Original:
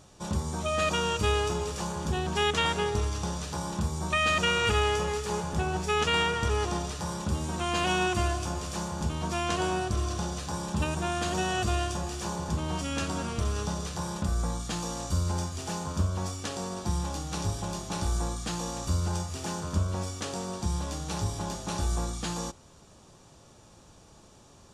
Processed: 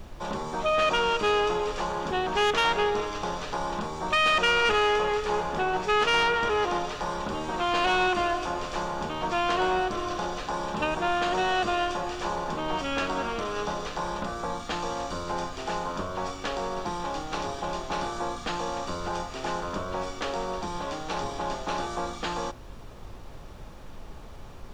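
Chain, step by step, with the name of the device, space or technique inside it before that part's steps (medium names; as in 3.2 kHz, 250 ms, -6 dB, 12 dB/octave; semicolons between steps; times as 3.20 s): aircraft cabin announcement (band-pass 370–3100 Hz; saturation -24.5 dBFS, distortion -14 dB; brown noise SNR 12 dB); trim +7.5 dB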